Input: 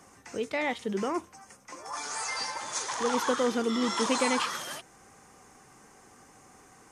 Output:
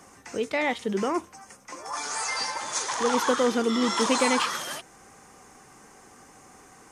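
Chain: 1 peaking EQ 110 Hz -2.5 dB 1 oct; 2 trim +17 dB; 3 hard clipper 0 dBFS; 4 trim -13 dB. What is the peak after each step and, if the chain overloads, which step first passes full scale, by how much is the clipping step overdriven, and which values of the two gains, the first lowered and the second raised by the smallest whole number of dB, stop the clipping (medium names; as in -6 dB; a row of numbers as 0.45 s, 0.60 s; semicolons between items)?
-14.0 dBFS, +3.0 dBFS, 0.0 dBFS, -13.0 dBFS; step 2, 3.0 dB; step 2 +14 dB, step 4 -10 dB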